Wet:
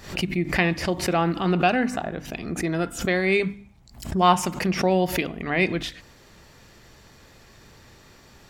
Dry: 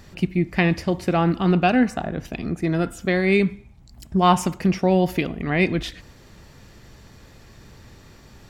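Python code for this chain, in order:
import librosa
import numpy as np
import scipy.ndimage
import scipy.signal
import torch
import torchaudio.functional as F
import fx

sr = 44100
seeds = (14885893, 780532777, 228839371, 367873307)

y = fx.low_shelf(x, sr, hz=300.0, db=-6.5)
y = fx.hum_notches(y, sr, base_hz=50, count=6)
y = fx.pre_swell(y, sr, db_per_s=110.0)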